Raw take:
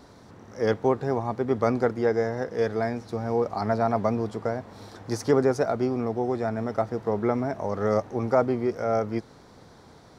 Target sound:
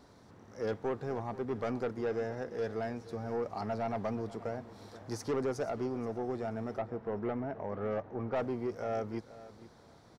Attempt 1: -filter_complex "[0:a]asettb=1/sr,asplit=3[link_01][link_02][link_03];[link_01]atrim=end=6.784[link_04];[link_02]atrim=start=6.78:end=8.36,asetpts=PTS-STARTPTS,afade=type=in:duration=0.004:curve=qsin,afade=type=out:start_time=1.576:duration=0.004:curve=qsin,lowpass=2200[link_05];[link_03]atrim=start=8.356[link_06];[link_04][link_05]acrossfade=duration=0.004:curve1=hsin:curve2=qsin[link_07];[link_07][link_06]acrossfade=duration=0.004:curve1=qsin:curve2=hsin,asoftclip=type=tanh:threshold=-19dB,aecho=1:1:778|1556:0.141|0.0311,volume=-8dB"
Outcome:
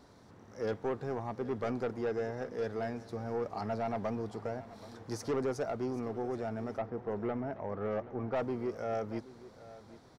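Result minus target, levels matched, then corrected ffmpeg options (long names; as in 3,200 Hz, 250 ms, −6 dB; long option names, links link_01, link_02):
echo 300 ms late
-filter_complex "[0:a]asettb=1/sr,asplit=3[link_01][link_02][link_03];[link_01]atrim=end=6.784[link_04];[link_02]atrim=start=6.78:end=8.36,asetpts=PTS-STARTPTS,afade=type=in:duration=0.004:curve=qsin,afade=type=out:start_time=1.576:duration=0.004:curve=qsin,lowpass=2200[link_05];[link_03]atrim=start=8.356[link_06];[link_04][link_05]acrossfade=duration=0.004:curve1=hsin:curve2=qsin[link_07];[link_07][link_06]acrossfade=duration=0.004:curve1=qsin:curve2=hsin,asoftclip=type=tanh:threshold=-19dB,aecho=1:1:478|956:0.141|0.0311,volume=-8dB"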